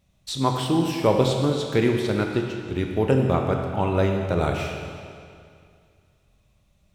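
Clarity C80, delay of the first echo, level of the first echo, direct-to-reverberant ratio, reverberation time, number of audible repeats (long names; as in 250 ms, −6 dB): 4.5 dB, no echo audible, no echo audible, 2.0 dB, 2.3 s, no echo audible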